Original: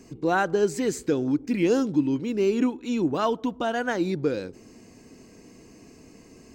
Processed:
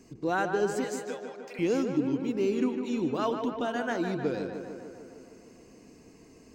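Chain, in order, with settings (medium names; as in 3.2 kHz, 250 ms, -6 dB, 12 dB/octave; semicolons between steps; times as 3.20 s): 0.84–1.59 s: elliptic high-pass 520 Hz; tape echo 151 ms, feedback 75%, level -5.5 dB, low-pass 3 kHz; trim -5.5 dB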